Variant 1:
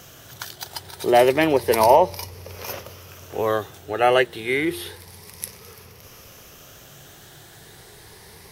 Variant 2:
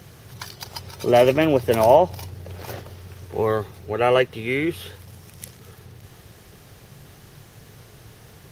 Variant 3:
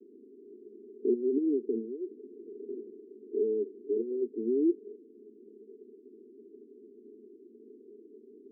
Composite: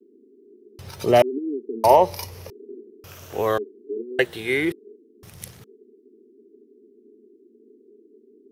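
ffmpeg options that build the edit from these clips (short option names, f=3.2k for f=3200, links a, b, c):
-filter_complex "[1:a]asplit=2[a][b];[0:a]asplit=3[c][d][e];[2:a]asplit=6[f][g][h][i][j][k];[f]atrim=end=0.792[l];[a]atrim=start=0.788:end=1.222[m];[g]atrim=start=1.218:end=1.842[n];[c]atrim=start=1.838:end=2.502[o];[h]atrim=start=2.498:end=3.042[p];[d]atrim=start=3.038:end=3.582[q];[i]atrim=start=3.578:end=4.192[r];[e]atrim=start=4.188:end=4.722[s];[j]atrim=start=4.718:end=5.232[t];[b]atrim=start=5.228:end=5.642[u];[k]atrim=start=5.638[v];[l][m]acrossfade=d=0.004:c1=hsin:c2=hsin[w];[w][n]acrossfade=d=0.004:c1=hsin:c2=hsin[x];[x][o]acrossfade=d=0.004:c1=hsin:c2=hsin[y];[y][p]acrossfade=d=0.004:c1=hsin:c2=hsin[z];[z][q]acrossfade=d=0.004:c1=hsin:c2=hsin[aa];[aa][r]acrossfade=d=0.004:c1=hsin:c2=hsin[ab];[ab][s]acrossfade=d=0.004:c1=hsin:c2=hsin[ac];[ac][t]acrossfade=d=0.004:c1=hsin:c2=hsin[ad];[ad][u]acrossfade=d=0.004:c1=hsin:c2=hsin[ae];[ae][v]acrossfade=d=0.004:c1=hsin:c2=hsin"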